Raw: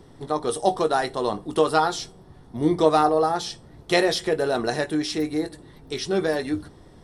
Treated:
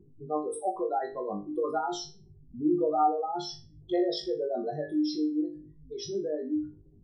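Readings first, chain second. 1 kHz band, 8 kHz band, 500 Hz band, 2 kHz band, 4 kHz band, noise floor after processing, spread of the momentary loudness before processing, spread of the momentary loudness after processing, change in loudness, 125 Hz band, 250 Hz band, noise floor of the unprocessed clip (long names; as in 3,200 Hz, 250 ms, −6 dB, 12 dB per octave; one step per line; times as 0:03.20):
−7.0 dB, −11.0 dB, −8.0 dB, −19.5 dB, −11.0 dB, −56 dBFS, 13 LU, 14 LU, −7.5 dB, −13.0 dB, −4.0 dB, −49 dBFS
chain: expanding power law on the bin magnitudes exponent 3.1
flutter between parallel walls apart 3.4 metres, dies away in 0.31 s
level −8.5 dB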